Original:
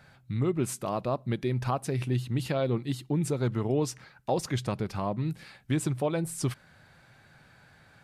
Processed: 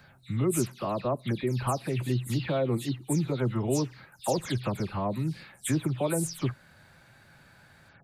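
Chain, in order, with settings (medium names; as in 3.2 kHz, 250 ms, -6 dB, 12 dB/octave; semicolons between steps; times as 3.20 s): delay that grows with frequency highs early, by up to 152 ms; treble shelf 11 kHz +8 dB; trim +1 dB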